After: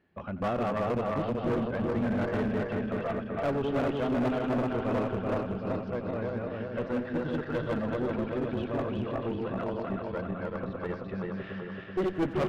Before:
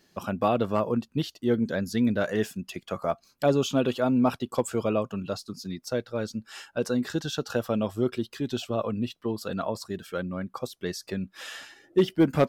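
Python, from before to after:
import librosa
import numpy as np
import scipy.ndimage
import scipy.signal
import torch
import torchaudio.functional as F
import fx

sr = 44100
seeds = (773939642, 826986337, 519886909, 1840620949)

p1 = fx.reverse_delay_fb(x, sr, ms=191, feedback_pct=78, wet_db=-1.5)
p2 = scipy.signal.sosfilt(scipy.signal.butter(4, 2500.0, 'lowpass', fs=sr, output='sos'), p1)
p3 = fx.peak_eq(p2, sr, hz=78.0, db=10.0, octaves=0.58)
p4 = 10.0 ** (-20.5 / 20.0) * (np.abs((p3 / 10.0 ** (-20.5 / 20.0) + 3.0) % 4.0 - 2.0) - 1.0)
p5 = p3 + (p4 * librosa.db_to_amplitude(-4.0))
p6 = fx.tube_stage(p5, sr, drive_db=12.0, bias=0.8)
p7 = p6 + fx.echo_single(p6, sr, ms=90, db=-16.0, dry=0)
y = p7 * librosa.db_to_amplitude(-5.0)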